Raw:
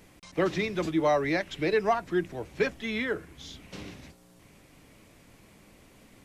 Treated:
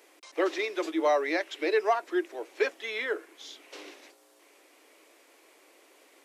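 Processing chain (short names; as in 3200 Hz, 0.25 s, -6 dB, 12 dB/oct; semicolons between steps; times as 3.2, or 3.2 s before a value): steep high-pass 320 Hz 48 dB/oct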